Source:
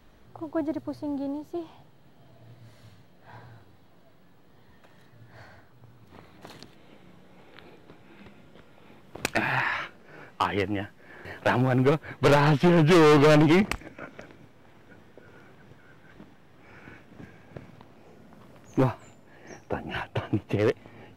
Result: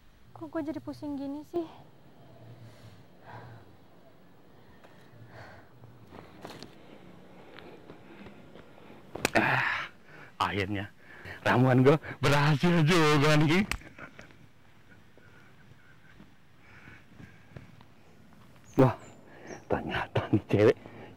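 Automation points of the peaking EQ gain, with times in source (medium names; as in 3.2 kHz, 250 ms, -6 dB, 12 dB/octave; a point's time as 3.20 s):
peaking EQ 470 Hz 2.3 oct
-6.5 dB
from 1.56 s +3 dB
from 9.55 s -6 dB
from 11.50 s +1 dB
from 12.18 s -9 dB
from 18.79 s +2.5 dB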